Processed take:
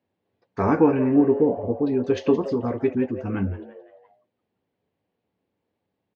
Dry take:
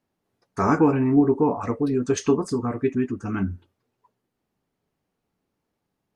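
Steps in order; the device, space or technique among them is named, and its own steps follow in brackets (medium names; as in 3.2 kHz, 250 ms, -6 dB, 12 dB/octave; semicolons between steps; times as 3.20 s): 1.37–1.79 s: steep low-pass 720 Hz 36 dB/octave; frequency-shifting delay pedal into a guitar cabinet (frequency-shifting echo 171 ms, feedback 44%, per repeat +130 Hz, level -15.5 dB; cabinet simulation 84–4000 Hz, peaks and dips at 96 Hz +6 dB, 140 Hz -5 dB, 510 Hz +5 dB, 1.3 kHz -7 dB)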